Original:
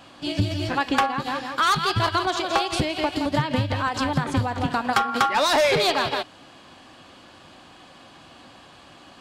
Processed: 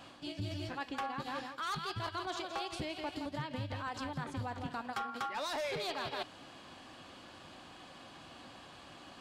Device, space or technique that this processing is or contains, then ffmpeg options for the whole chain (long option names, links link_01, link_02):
compression on the reversed sound: -af "areverse,acompressor=threshold=-32dB:ratio=6,areverse,volume=-5dB"